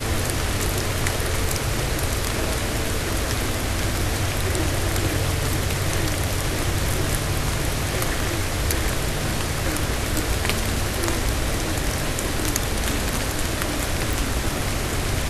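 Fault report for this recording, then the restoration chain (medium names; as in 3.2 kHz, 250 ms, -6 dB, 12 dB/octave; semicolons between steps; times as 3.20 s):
14.13 s: pop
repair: de-click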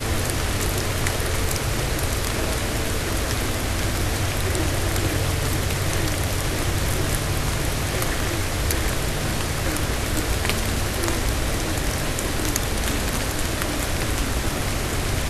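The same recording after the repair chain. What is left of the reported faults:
nothing left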